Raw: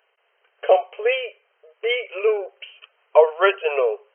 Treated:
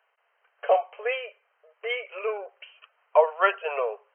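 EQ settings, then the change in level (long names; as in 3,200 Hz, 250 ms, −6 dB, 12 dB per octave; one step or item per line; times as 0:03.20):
three-way crossover with the lows and the highs turned down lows −23 dB, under 590 Hz, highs −12 dB, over 2,000 Hz
0.0 dB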